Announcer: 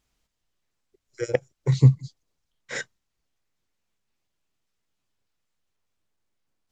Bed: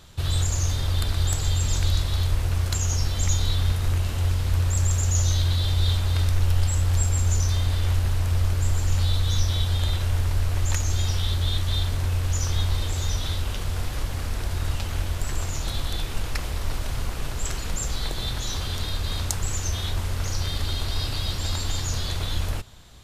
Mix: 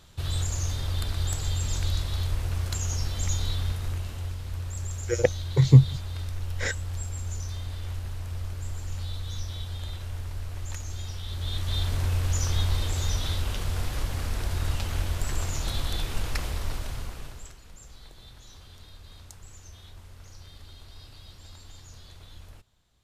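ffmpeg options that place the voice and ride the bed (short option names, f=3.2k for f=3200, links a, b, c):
-filter_complex "[0:a]adelay=3900,volume=1.5dB[a];[1:a]volume=5dB,afade=t=out:st=3.46:d=0.91:silence=0.473151,afade=t=in:st=11.25:d=0.72:silence=0.316228,afade=t=out:st=16.43:d=1.12:silence=0.112202[b];[a][b]amix=inputs=2:normalize=0"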